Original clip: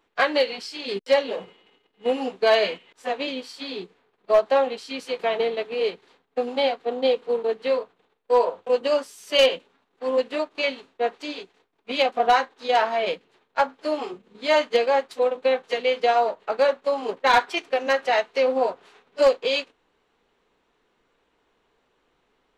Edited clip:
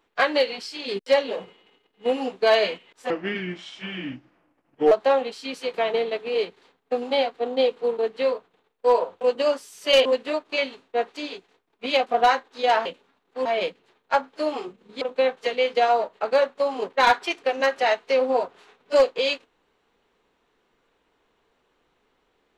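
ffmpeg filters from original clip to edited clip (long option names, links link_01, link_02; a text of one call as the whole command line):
ffmpeg -i in.wav -filter_complex "[0:a]asplit=7[link_01][link_02][link_03][link_04][link_05][link_06][link_07];[link_01]atrim=end=3.104[link_08];[link_02]atrim=start=3.1:end=4.37,asetpts=PTS-STARTPTS,asetrate=30870,aresample=44100[link_09];[link_03]atrim=start=4.366:end=9.512[link_10];[link_04]atrim=start=10.108:end=12.912[link_11];[link_05]atrim=start=9.508:end=10.112[link_12];[link_06]atrim=start=12.908:end=14.472[link_13];[link_07]atrim=start=15.278[link_14];[link_08][link_09]acrossfade=duration=0.004:curve1=hsin:curve2=hsin[link_15];[link_15][link_10]acrossfade=duration=0.004:curve1=hsin:curve2=hsin[link_16];[link_16][link_11]acrossfade=duration=0.004:curve1=hsin:curve2=hsin[link_17];[link_17][link_12]acrossfade=duration=0.004:curve1=hsin:curve2=hsin[link_18];[link_18][link_13]acrossfade=duration=0.004:curve1=hsin:curve2=hsin[link_19];[link_19][link_14]acrossfade=duration=0.004:curve1=hsin:curve2=hsin" out.wav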